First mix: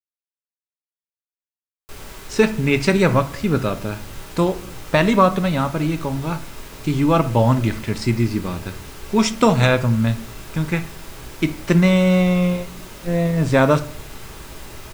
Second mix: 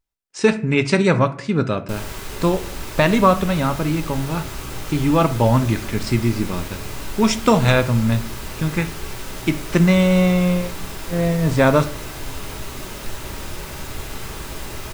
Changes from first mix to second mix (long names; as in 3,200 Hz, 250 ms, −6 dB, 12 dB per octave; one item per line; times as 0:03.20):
speech: entry −1.95 s
background +5.5 dB